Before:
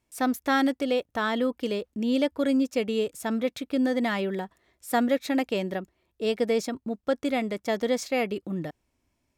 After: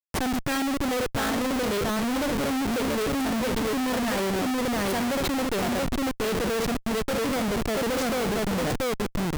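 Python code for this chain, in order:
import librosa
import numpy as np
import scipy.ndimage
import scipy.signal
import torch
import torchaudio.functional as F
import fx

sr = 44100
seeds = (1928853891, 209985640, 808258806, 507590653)

y = fx.echo_multitap(x, sr, ms=(62, 683, 890), db=(-11.5, -5.0, -20.0))
y = fx.quant_companded(y, sr, bits=4)
y = fx.schmitt(y, sr, flips_db=-36.0)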